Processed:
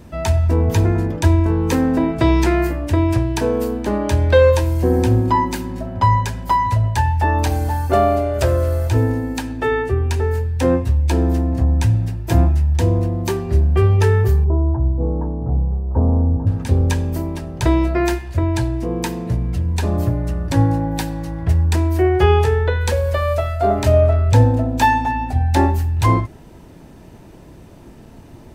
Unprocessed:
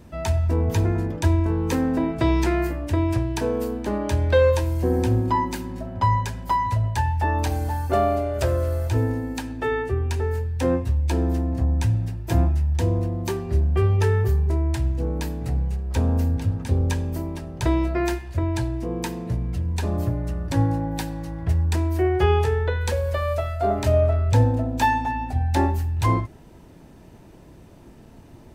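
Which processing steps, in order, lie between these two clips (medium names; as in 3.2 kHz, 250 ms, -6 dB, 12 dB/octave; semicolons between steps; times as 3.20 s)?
14.44–16.47 s: steep low-pass 1.1 kHz 36 dB/octave; trim +5.5 dB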